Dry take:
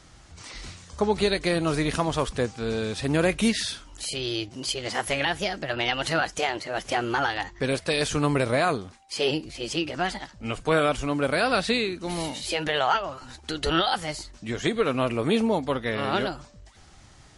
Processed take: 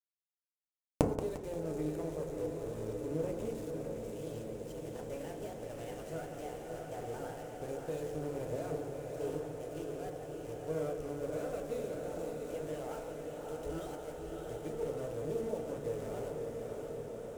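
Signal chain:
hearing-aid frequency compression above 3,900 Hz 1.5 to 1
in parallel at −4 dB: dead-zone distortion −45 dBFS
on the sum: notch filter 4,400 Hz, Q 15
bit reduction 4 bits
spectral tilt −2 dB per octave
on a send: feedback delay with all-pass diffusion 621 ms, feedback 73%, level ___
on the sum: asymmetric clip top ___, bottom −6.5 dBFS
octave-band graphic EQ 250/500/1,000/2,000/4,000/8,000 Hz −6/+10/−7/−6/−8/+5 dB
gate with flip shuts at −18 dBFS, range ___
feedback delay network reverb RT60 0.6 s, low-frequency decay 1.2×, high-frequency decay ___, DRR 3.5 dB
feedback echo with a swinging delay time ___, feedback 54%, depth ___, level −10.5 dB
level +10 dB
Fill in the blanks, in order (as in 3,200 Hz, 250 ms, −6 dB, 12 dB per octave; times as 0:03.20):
−5 dB, −18.5 dBFS, −35 dB, 0.3×, 175 ms, 148 cents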